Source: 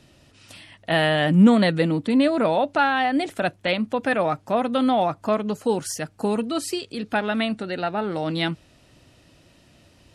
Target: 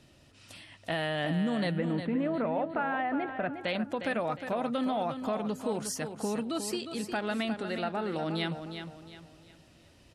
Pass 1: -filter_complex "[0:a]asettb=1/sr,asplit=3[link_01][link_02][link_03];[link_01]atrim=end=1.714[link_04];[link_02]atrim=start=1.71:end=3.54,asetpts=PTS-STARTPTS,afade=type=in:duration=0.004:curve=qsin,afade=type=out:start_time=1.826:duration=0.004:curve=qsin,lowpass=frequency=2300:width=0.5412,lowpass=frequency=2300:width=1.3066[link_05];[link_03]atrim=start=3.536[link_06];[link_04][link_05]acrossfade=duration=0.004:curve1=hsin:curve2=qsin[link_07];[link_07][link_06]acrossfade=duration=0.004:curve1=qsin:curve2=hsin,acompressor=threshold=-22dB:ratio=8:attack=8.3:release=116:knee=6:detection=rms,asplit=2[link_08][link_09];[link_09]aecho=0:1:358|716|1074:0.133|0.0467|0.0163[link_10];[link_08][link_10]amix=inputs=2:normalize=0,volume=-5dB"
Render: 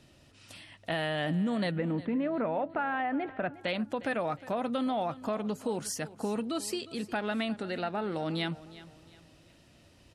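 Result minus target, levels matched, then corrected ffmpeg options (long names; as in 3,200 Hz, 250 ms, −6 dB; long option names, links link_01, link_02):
echo-to-direct −9 dB
-filter_complex "[0:a]asettb=1/sr,asplit=3[link_01][link_02][link_03];[link_01]atrim=end=1.714[link_04];[link_02]atrim=start=1.71:end=3.54,asetpts=PTS-STARTPTS,afade=type=in:duration=0.004:curve=qsin,afade=type=out:start_time=1.826:duration=0.004:curve=qsin,lowpass=frequency=2300:width=0.5412,lowpass=frequency=2300:width=1.3066[link_05];[link_03]atrim=start=3.536[link_06];[link_04][link_05]acrossfade=duration=0.004:curve1=hsin:curve2=qsin[link_07];[link_07][link_06]acrossfade=duration=0.004:curve1=qsin:curve2=hsin,acompressor=threshold=-22dB:ratio=8:attack=8.3:release=116:knee=6:detection=rms,asplit=2[link_08][link_09];[link_09]aecho=0:1:358|716|1074|1432:0.376|0.132|0.046|0.0161[link_10];[link_08][link_10]amix=inputs=2:normalize=0,volume=-5dB"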